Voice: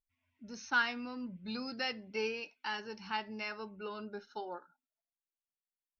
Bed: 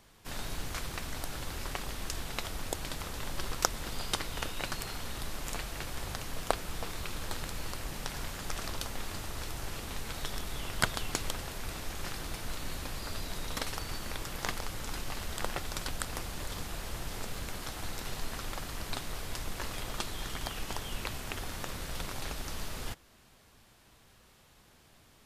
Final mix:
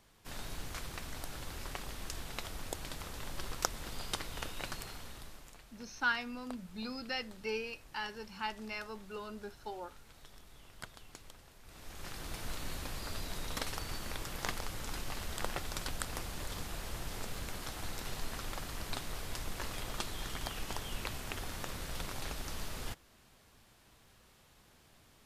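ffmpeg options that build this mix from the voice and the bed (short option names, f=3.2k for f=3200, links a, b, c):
-filter_complex "[0:a]adelay=5300,volume=-1.5dB[a];[1:a]volume=11.5dB,afade=t=out:st=4.69:d=0.85:silence=0.199526,afade=t=in:st=11.64:d=0.79:silence=0.149624[b];[a][b]amix=inputs=2:normalize=0"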